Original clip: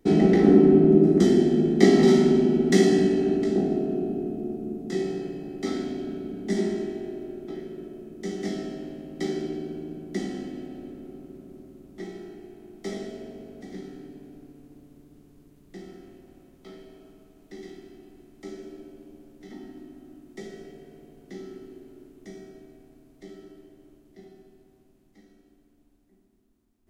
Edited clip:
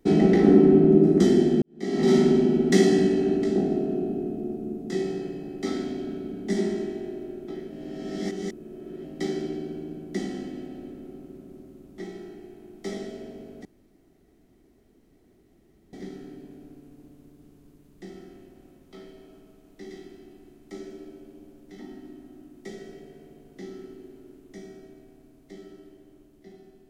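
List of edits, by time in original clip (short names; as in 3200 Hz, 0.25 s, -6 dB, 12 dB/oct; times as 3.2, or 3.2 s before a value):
1.62–2.16 fade in quadratic
7.7–9.04 reverse
13.65 insert room tone 2.28 s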